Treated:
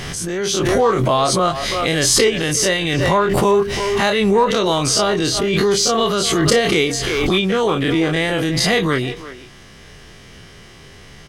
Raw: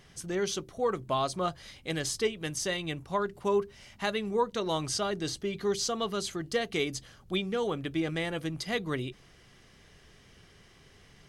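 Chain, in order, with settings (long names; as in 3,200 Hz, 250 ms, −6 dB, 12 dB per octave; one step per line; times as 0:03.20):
every bin's largest magnitude spread in time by 60 ms
far-end echo of a speakerphone 350 ms, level −14 dB
automatic gain control gain up to 12 dB
in parallel at −11 dB: soft clipping −13 dBFS, distortion −13 dB
on the sum: background raised ahead of every attack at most 21 dB per second
level −2.5 dB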